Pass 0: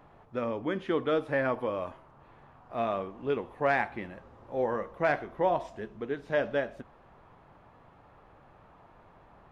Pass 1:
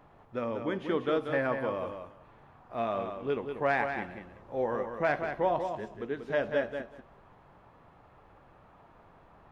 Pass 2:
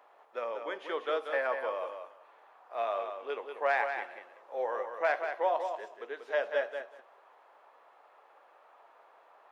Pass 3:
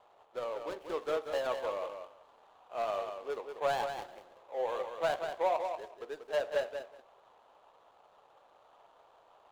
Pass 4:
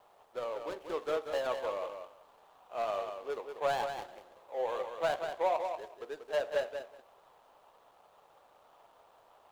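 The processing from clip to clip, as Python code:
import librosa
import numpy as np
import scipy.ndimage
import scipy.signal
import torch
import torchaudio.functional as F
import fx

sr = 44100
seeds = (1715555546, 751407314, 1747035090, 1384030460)

y1 = fx.echo_feedback(x, sr, ms=188, feedback_pct=15, wet_db=-7.0)
y1 = y1 * librosa.db_to_amplitude(-1.5)
y2 = scipy.signal.sosfilt(scipy.signal.butter(4, 490.0, 'highpass', fs=sr, output='sos'), y1)
y3 = scipy.ndimage.median_filter(y2, 25, mode='constant')
y4 = fx.quant_dither(y3, sr, seeds[0], bits=12, dither='none')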